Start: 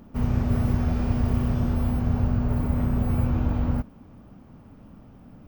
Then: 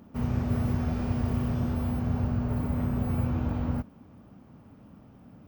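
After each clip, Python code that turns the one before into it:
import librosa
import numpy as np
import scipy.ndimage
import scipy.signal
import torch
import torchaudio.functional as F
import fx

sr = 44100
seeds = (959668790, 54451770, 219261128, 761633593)

y = scipy.signal.sosfilt(scipy.signal.butter(2, 70.0, 'highpass', fs=sr, output='sos'), x)
y = F.gain(torch.from_numpy(y), -3.0).numpy()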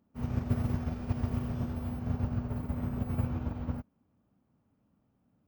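y = fx.upward_expand(x, sr, threshold_db=-37.0, expansion=2.5)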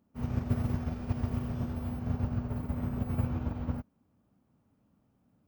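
y = fx.rider(x, sr, range_db=10, speed_s=2.0)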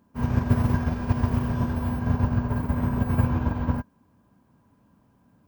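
y = fx.small_body(x, sr, hz=(1000.0, 1600.0), ring_ms=65, db=15)
y = F.gain(torch.from_numpy(y), 8.5).numpy()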